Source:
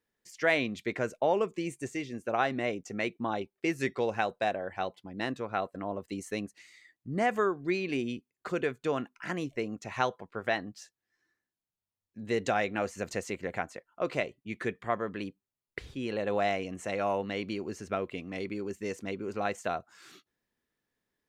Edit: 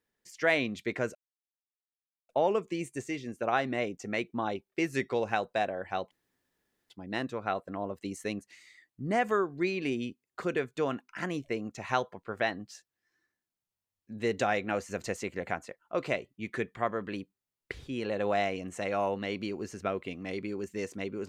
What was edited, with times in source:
1.15 insert silence 1.14 s
4.97 insert room tone 0.79 s

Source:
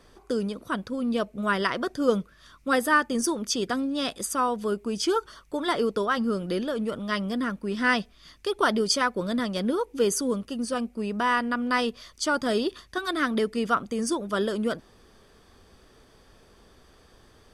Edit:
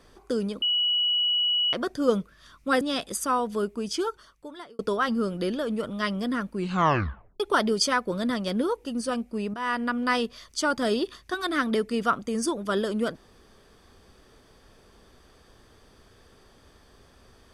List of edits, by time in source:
0.62–1.73 bleep 2930 Hz -21 dBFS
2.81–3.9 cut
4.7–5.88 fade out
7.64 tape stop 0.85 s
9.94–10.49 cut
11.18–11.47 fade in, from -13 dB

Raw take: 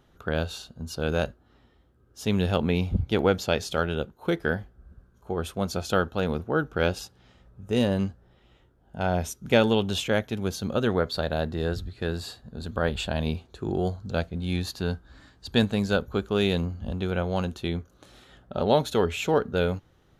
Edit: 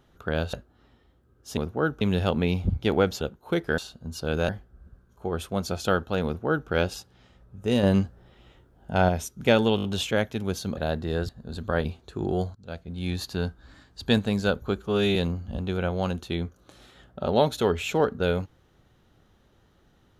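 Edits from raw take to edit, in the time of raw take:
0.53–1.24 move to 4.54
3.48–3.97 cut
6.3–6.74 copy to 2.28
7.88–9.14 gain +5 dB
9.81 stutter 0.02 s, 5 plays
10.74–11.27 cut
11.79–12.37 cut
12.93–13.31 cut
14.01–14.67 fade in, from -23.5 dB
16.24–16.49 stretch 1.5×

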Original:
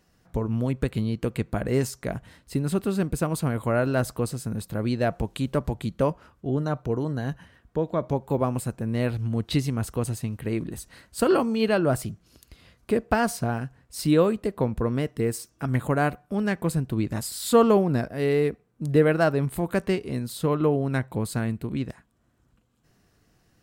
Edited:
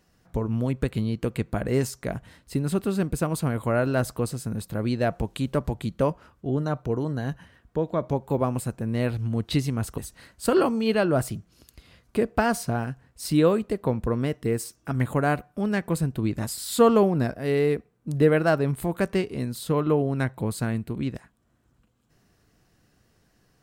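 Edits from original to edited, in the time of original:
9.98–10.72 cut

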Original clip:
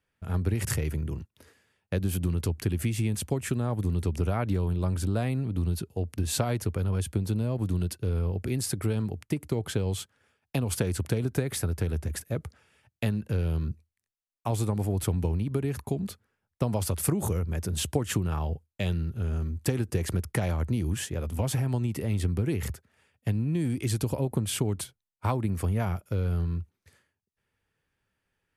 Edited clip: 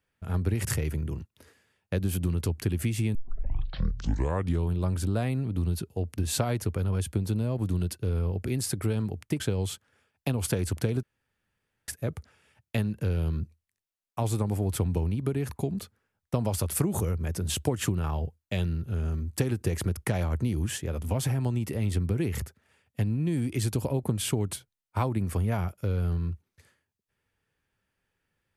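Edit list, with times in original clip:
3.15 tape start 1.54 s
9.4–9.68 cut
11.31–12.16 room tone

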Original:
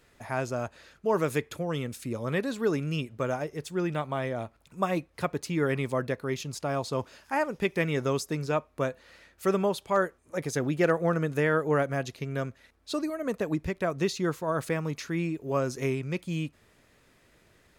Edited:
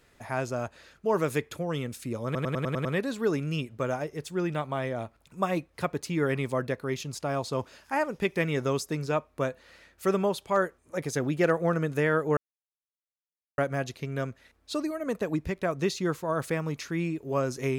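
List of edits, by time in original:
2.25 stutter 0.10 s, 7 plays
11.77 insert silence 1.21 s

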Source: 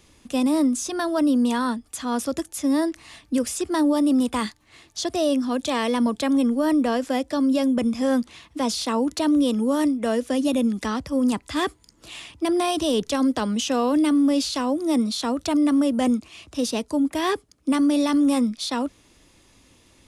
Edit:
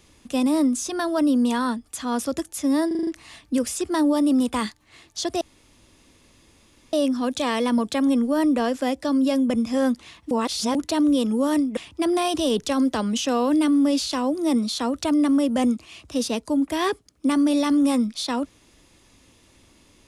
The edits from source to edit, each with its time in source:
2.87 stutter 0.04 s, 6 plays
5.21 insert room tone 1.52 s
8.59–9.03 reverse
10.05–12.2 cut

